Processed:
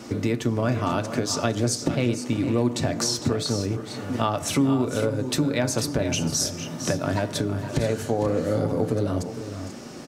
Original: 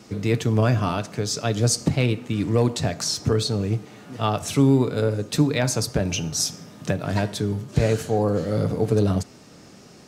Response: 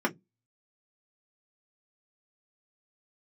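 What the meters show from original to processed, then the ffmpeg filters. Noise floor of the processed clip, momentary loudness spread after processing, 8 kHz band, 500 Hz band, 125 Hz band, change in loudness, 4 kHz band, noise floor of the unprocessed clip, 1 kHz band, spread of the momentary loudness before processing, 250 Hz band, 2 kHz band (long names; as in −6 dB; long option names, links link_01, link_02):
−37 dBFS, 5 LU, −0.5 dB, −1.5 dB, −4.5 dB, −2.0 dB, −1.0 dB, −47 dBFS, −0.5 dB, 7 LU, −0.5 dB, −1.0 dB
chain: -filter_complex "[0:a]acompressor=threshold=-29dB:ratio=4,aecho=1:1:456|487:0.251|0.237,asplit=2[link_01][link_02];[1:a]atrim=start_sample=2205[link_03];[link_02][link_03]afir=irnorm=-1:irlink=0,volume=-16dB[link_04];[link_01][link_04]amix=inputs=2:normalize=0,volume=5dB"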